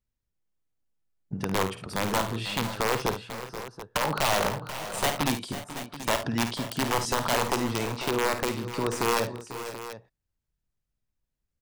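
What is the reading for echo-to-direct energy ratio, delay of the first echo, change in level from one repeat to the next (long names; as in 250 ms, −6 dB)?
−5.5 dB, 52 ms, repeats not evenly spaced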